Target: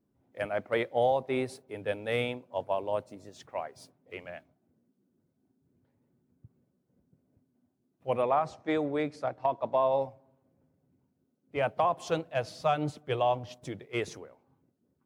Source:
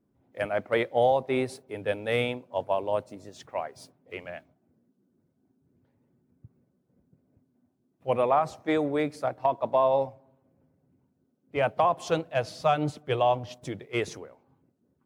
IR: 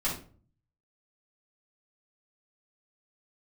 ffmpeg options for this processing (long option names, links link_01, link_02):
-filter_complex "[0:a]asettb=1/sr,asplit=3[link_01][link_02][link_03];[link_01]atrim=end=8.224[link_04];[link_02]atrim=start=8.22:end=9.92,asetpts=PTS-STARTPTS,afade=type=in:duration=0.004:curve=qsin,afade=type=out:start_time=1.696:duration=0.004:curve=qsin,lowpass=7100[link_05];[link_03]atrim=start=9.916[link_06];[link_04][link_05]acrossfade=duration=0.004:curve1=hsin:curve2=qsin[link_07];[link_07][link_06]acrossfade=duration=0.004:curve1=qsin:curve2=hsin,volume=-3.5dB"